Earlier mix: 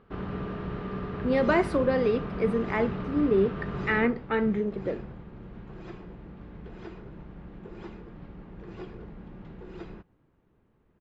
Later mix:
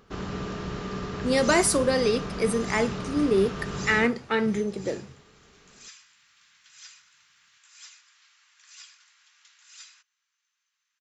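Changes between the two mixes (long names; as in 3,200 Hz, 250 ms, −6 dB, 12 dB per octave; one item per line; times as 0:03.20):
second sound: add Bessel high-pass filter 2,200 Hz, order 8
master: remove high-frequency loss of the air 470 metres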